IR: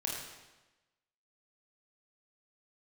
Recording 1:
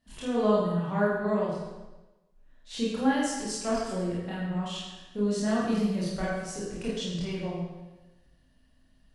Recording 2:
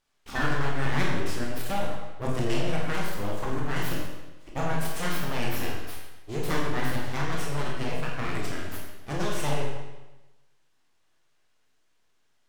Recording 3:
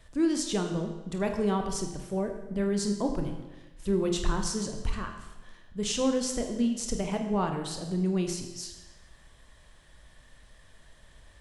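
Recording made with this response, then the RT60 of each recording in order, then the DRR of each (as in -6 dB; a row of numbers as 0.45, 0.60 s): 2; 1.1, 1.1, 1.1 s; -8.5, -3.0, 4.0 dB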